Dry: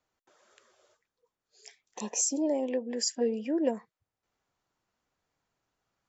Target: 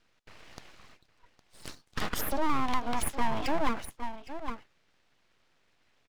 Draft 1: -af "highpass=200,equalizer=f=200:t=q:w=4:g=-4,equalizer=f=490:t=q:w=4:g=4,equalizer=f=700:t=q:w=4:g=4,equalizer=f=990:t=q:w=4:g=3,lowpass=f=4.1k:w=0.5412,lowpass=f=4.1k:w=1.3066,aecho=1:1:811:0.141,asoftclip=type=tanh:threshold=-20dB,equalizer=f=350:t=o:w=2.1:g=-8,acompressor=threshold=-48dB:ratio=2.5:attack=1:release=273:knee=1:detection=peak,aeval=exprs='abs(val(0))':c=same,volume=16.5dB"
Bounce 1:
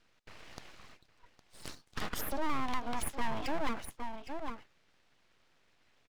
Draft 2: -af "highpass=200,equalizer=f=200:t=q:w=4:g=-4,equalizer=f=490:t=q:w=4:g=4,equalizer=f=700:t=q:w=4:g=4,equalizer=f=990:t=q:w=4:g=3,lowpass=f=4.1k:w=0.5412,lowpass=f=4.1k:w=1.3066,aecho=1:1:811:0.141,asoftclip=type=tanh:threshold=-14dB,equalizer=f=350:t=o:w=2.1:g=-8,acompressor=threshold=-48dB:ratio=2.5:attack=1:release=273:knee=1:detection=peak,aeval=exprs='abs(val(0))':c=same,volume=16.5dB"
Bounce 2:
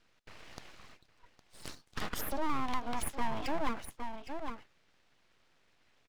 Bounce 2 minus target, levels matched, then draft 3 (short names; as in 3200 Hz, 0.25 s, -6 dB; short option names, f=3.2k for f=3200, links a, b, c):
compressor: peak gain reduction +5 dB
-af "highpass=200,equalizer=f=200:t=q:w=4:g=-4,equalizer=f=490:t=q:w=4:g=4,equalizer=f=700:t=q:w=4:g=4,equalizer=f=990:t=q:w=4:g=3,lowpass=f=4.1k:w=0.5412,lowpass=f=4.1k:w=1.3066,aecho=1:1:811:0.141,asoftclip=type=tanh:threshold=-14dB,equalizer=f=350:t=o:w=2.1:g=-8,acompressor=threshold=-39.5dB:ratio=2.5:attack=1:release=273:knee=1:detection=peak,aeval=exprs='abs(val(0))':c=same,volume=16.5dB"